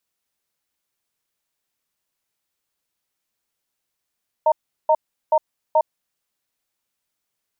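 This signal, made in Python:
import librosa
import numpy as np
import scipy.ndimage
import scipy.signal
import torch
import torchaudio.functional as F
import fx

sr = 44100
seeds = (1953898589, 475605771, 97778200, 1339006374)

y = fx.cadence(sr, length_s=1.61, low_hz=624.0, high_hz=920.0, on_s=0.06, off_s=0.37, level_db=-15.0)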